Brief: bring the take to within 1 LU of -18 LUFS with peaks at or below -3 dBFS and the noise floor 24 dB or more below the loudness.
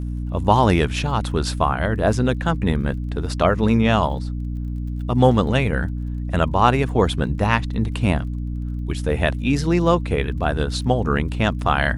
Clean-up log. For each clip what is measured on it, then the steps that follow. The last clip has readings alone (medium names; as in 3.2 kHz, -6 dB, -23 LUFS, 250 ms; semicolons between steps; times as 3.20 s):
tick rate 33 per s; hum 60 Hz; highest harmonic 300 Hz; hum level -24 dBFS; loudness -21.0 LUFS; peak level -1.0 dBFS; loudness target -18.0 LUFS
-> de-click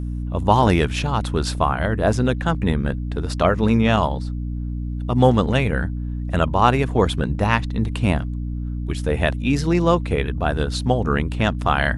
tick rate 0.17 per s; hum 60 Hz; highest harmonic 300 Hz; hum level -24 dBFS
-> de-hum 60 Hz, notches 5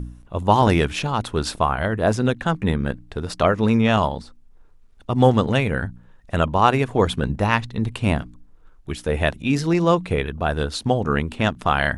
hum not found; loudness -21.0 LUFS; peak level -1.5 dBFS; loudness target -18.0 LUFS
-> trim +3 dB; peak limiter -3 dBFS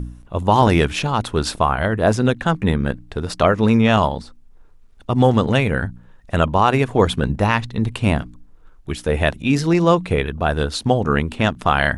loudness -18.5 LUFS; peak level -3.0 dBFS; noise floor -47 dBFS